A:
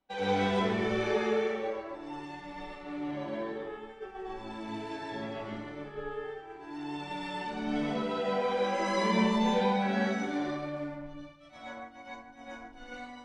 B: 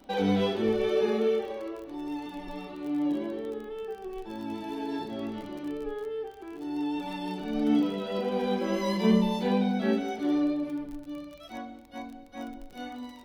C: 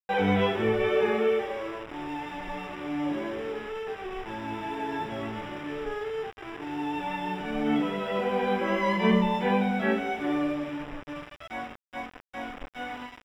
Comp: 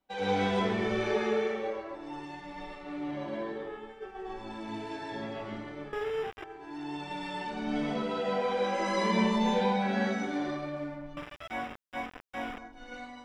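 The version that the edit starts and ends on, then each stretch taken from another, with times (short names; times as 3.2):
A
5.93–6.44 from C
11.17–12.58 from C
not used: B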